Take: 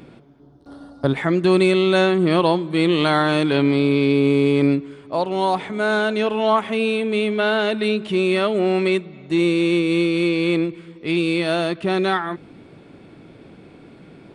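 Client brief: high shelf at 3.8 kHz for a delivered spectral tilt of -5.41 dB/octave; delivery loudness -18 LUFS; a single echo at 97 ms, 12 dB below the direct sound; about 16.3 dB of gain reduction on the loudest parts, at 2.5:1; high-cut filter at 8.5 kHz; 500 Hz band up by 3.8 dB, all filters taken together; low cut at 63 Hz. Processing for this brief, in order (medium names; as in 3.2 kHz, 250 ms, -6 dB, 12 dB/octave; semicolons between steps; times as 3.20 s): high-pass 63 Hz; low-pass 8.5 kHz; peaking EQ 500 Hz +5.5 dB; treble shelf 3.8 kHz -9 dB; compression 2.5:1, threshold -36 dBFS; delay 97 ms -12 dB; trim +13.5 dB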